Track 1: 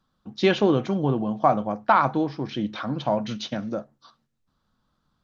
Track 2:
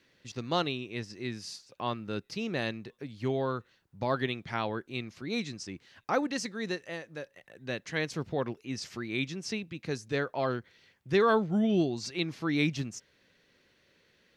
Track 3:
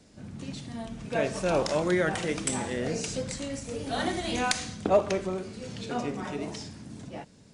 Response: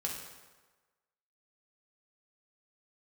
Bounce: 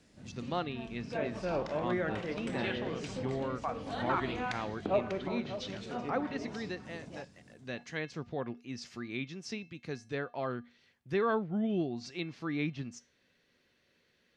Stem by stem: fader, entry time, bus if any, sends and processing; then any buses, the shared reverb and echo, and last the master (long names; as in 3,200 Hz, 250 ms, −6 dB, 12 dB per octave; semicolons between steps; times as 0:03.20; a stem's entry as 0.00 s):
−17.5 dB, 2.20 s, muted 0:04.20–0:05.15, send −11.5 dB, no echo send, tilt shelving filter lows −9.5 dB
+2.0 dB, 0.00 s, no send, no echo send, tuned comb filter 240 Hz, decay 0.33 s, harmonics odd, mix 60%
−7.5 dB, 0.00 s, no send, echo send −12 dB, no processing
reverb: on, RT60 1.3 s, pre-delay 3 ms
echo: single-tap delay 595 ms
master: treble cut that deepens with the level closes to 2,700 Hz, closed at −31.5 dBFS